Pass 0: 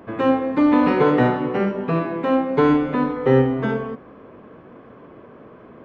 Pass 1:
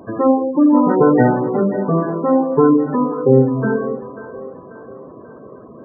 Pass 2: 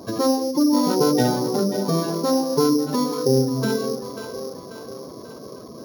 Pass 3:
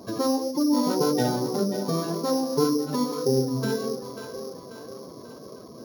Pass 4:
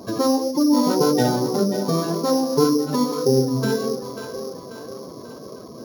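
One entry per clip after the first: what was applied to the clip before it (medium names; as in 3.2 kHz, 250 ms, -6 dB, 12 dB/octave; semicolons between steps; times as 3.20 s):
spectral gate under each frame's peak -15 dB strong; two-band feedback delay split 390 Hz, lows 169 ms, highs 539 ms, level -13 dB; trim +4.5 dB
sorted samples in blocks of 8 samples; compression 1.5:1, threshold -26 dBFS, peak gain reduction 7.5 dB
flange 1.8 Hz, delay 4.2 ms, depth 4.5 ms, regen +74%
median filter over 3 samples; trim +5 dB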